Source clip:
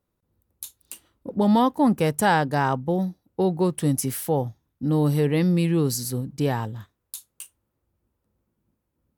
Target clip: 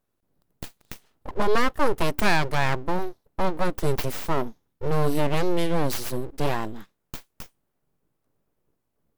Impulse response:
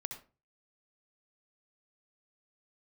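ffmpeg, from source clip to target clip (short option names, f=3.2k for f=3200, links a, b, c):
-af "aeval=exprs='abs(val(0))':c=same,volume=1.5dB"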